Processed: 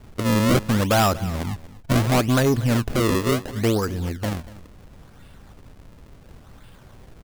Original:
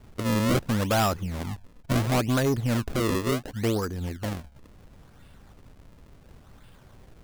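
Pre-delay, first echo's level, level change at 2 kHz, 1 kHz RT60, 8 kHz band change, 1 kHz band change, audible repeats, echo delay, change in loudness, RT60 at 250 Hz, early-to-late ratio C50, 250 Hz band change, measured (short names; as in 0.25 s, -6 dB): none, -18.0 dB, +5.0 dB, none, +5.0 dB, +5.0 dB, 1, 0.237 s, +5.0 dB, none, none, +5.0 dB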